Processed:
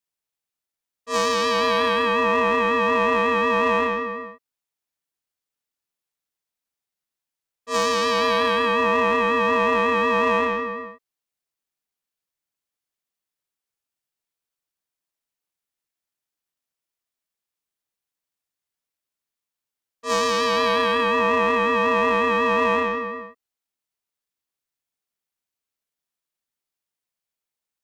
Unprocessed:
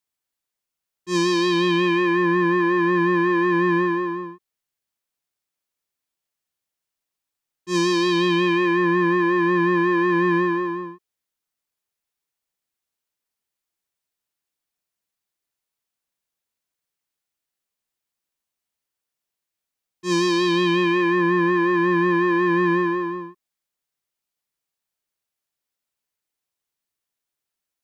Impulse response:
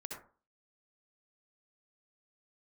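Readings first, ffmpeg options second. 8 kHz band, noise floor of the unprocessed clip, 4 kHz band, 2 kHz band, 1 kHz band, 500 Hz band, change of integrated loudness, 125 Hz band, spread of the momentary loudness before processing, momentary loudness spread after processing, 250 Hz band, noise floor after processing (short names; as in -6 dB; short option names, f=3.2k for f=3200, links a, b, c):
n/a, -85 dBFS, +1.5 dB, 0.0 dB, +3.5 dB, 0.0 dB, -0.5 dB, under -10 dB, 7 LU, 8 LU, -9.5 dB, under -85 dBFS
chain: -filter_complex "[0:a]asplit=2[a][b];[b]acrusher=bits=2:mix=0:aa=0.5,volume=-8.5dB[c];[a][c]amix=inputs=2:normalize=0,aeval=exprs='val(0)*sin(2*PI*820*n/s)':c=same"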